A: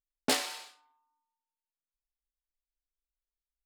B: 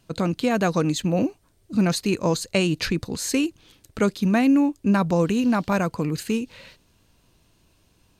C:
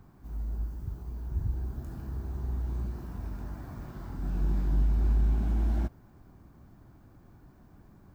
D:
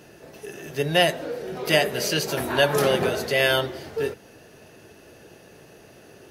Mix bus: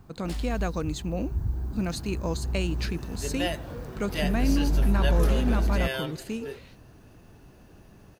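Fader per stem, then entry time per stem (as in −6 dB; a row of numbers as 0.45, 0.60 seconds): −15.5, −9.0, +2.5, −11.5 decibels; 0.00, 0.00, 0.00, 2.45 seconds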